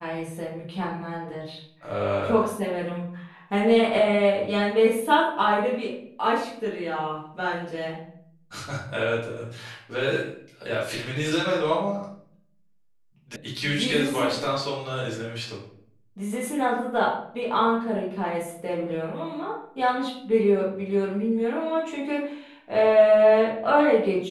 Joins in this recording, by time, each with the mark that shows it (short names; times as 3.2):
13.36 sound cut off